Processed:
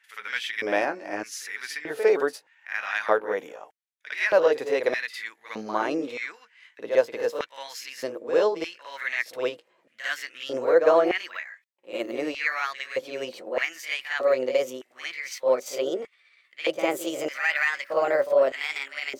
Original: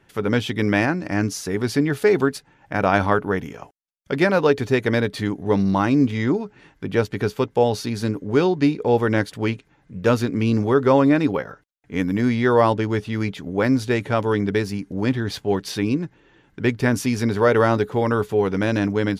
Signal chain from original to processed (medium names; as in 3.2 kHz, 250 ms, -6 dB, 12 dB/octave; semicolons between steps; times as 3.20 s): pitch bend over the whole clip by +5.5 st starting unshifted; reverse echo 55 ms -9 dB; LFO high-pass square 0.81 Hz 530–1900 Hz; trim -5.5 dB